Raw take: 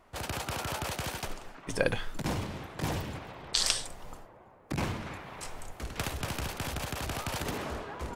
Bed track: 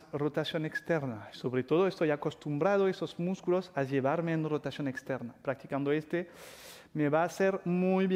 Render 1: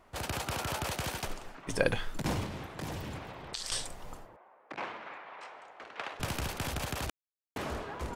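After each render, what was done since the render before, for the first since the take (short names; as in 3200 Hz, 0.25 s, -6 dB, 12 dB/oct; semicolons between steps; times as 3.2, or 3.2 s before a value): 2.46–3.72 compressor, threshold -35 dBFS; 4.36–6.2 BPF 600–2500 Hz; 7.1–7.56 mute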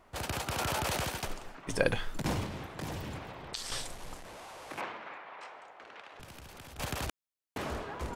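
0.58–1.04 fast leveller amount 100%; 3.56–4.81 delta modulation 64 kbps, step -41.5 dBFS; 5.61–6.79 compressor 16:1, threshold -45 dBFS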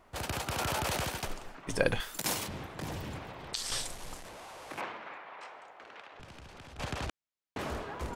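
2–2.48 RIAA curve recording; 3.39–4.29 bell 8800 Hz +4.5 dB 2.5 oct; 6.06–7.59 air absorption 66 m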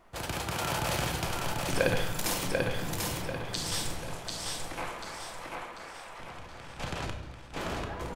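feedback echo 0.741 s, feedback 39%, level -3 dB; shoebox room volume 420 m³, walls mixed, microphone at 0.76 m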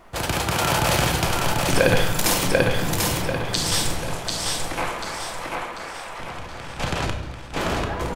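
gain +10.5 dB; limiter -3 dBFS, peak gain reduction 2.5 dB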